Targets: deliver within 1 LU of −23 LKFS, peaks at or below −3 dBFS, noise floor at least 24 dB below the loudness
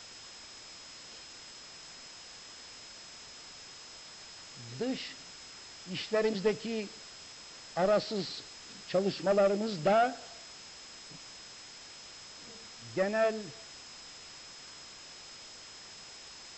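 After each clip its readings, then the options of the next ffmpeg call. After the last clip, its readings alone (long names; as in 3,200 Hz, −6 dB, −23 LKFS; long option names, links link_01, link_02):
interfering tone 5,100 Hz; level of the tone −51 dBFS; background noise floor −50 dBFS; target noise floor −56 dBFS; integrated loudness −32.0 LKFS; sample peak −17.5 dBFS; target loudness −23.0 LKFS
→ -af "bandreject=frequency=5100:width=30"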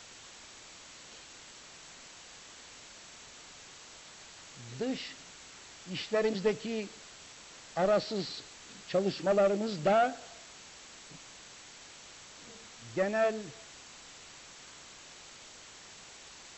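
interfering tone none found; background noise floor −52 dBFS; target noise floor −56 dBFS
→ -af "afftdn=noise_reduction=6:noise_floor=-52"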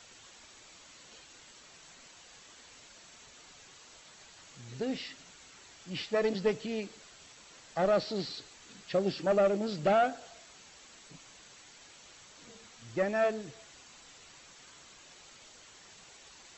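background noise floor −56 dBFS; integrated loudness −31.5 LKFS; sample peak −17.5 dBFS; target loudness −23.0 LKFS
→ -af "volume=8.5dB"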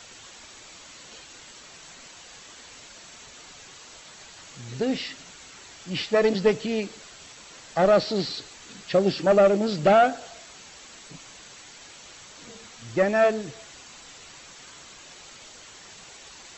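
integrated loudness −23.0 LKFS; sample peak −9.0 dBFS; background noise floor −47 dBFS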